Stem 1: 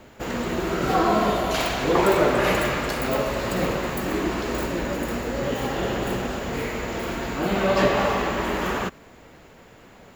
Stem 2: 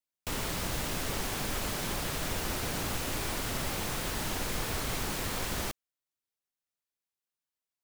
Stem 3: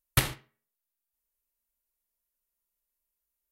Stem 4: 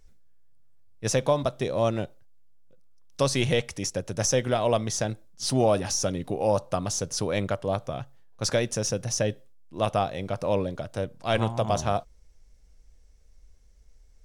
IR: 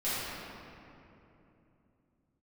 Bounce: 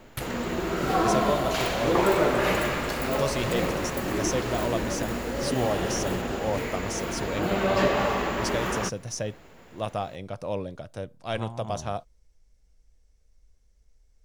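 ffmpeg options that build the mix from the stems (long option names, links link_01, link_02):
-filter_complex "[0:a]volume=-3dB[link_01];[1:a]adelay=500,volume=-12dB[link_02];[2:a]volume=-11.5dB[link_03];[3:a]volume=-5.5dB[link_04];[link_01][link_02][link_03][link_04]amix=inputs=4:normalize=0"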